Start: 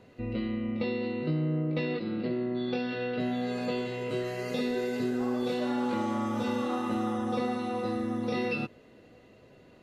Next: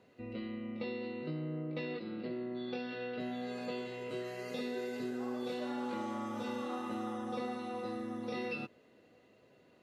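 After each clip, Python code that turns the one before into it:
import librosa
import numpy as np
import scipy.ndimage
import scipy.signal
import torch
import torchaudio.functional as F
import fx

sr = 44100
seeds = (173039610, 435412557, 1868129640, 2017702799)

y = fx.highpass(x, sr, hz=200.0, slope=6)
y = y * librosa.db_to_amplitude(-7.0)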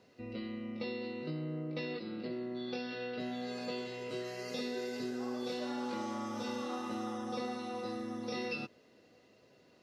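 y = fx.peak_eq(x, sr, hz=5300.0, db=11.5, octaves=0.6)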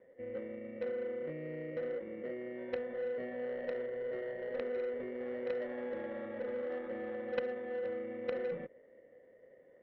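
y = fx.sample_hold(x, sr, seeds[0], rate_hz=2500.0, jitter_pct=0)
y = fx.formant_cascade(y, sr, vowel='e')
y = fx.cheby_harmonics(y, sr, harmonics=(3, 5), levels_db=(-9, -17), full_scale_db=-34.5)
y = y * librosa.db_to_amplitude(15.5)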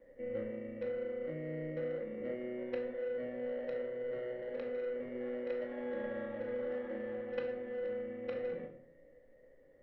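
y = fx.rider(x, sr, range_db=3, speed_s=0.5)
y = fx.dmg_noise_colour(y, sr, seeds[1], colour='brown', level_db=-74.0)
y = fx.room_shoebox(y, sr, seeds[2], volume_m3=740.0, walls='furnished', distance_m=2.3)
y = y * librosa.db_to_amplitude(-4.5)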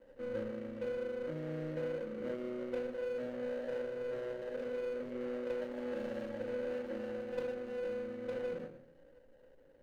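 y = scipy.ndimage.median_filter(x, 41, mode='constant')
y = y * librosa.db_to_amplitude(1.5)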